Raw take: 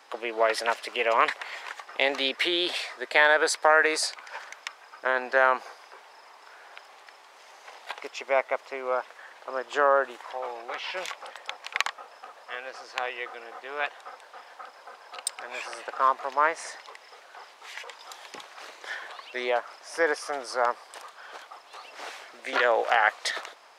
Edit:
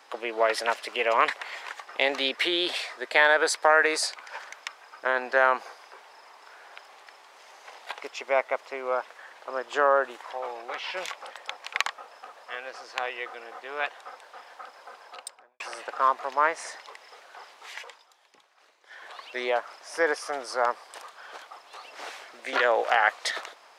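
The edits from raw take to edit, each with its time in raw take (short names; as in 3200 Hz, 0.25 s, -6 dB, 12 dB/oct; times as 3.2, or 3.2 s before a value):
15.01–15.6 studio fade out
17.78–19.18 dip -17.5 dB, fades 0.29 s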